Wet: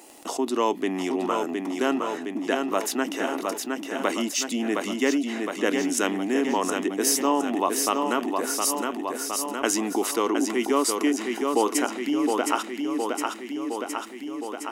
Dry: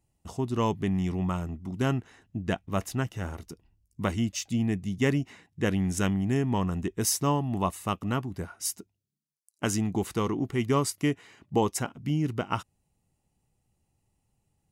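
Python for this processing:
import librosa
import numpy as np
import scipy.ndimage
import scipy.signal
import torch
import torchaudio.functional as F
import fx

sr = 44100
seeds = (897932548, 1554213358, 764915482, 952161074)

p1 = scipy.signal.sosfilt(scipy.signal.ellip(4, 1.0, 60, 270.0, 'highpass', fs=sr, output='sos'), x)
p2 = p1 + fx.echo_feedback(p1, sr, ms=714, feedback_pct=50, wet_db=-7.5, dry=0)
p3 = fx.dmg_crackle(p2, sr, seeds[0], per_s=26.0, level_db=-62.0)
p4 = fx.env_flatten(p3, sr, amount_pct=50)
y = p4 * librosa.db_to_amplitude(2.5)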